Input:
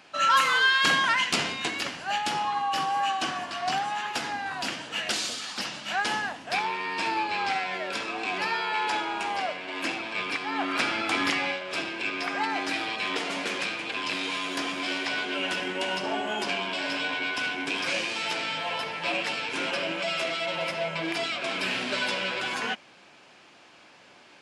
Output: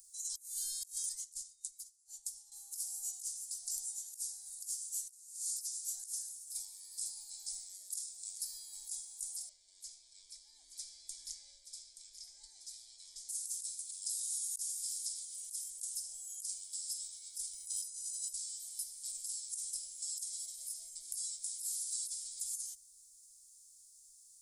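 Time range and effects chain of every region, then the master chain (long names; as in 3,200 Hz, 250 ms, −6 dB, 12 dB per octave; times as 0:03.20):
0:01.09–0:02.52: high-shelf EQ 9,400 Hz −9 dB + expander for the loud parts 2.5 to 1, over −38 dBFS
0:09.49–0:13.29: low-pass filter 3,900 Hz + double-tracking delay 25 ms −13 dB + single-tap delay 876 ms −10 dB
0:17.53–0:18.33: notch filter 940 Hz, Q 7.2 + comb filter 1 ms, depth 93% + floating-point word with a short mantissa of 8 bits
whole clip: inverse Chebyshev band-stop filter 110–2,900 Hz, stop band 60 dB; high-shelf EQ 2,700 Hz +8.5 dB; compressor whose output falls as the input rises −47 dBFS, ratio −0.5; level +7.5 dB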